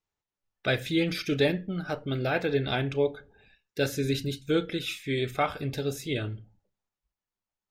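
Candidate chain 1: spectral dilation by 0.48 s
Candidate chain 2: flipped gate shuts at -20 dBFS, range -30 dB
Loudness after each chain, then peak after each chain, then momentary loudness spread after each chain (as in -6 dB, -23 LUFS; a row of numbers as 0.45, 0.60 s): -20.5, -37.5 LUFS; -5.0, -19.0 dBFS; 7, 11 LU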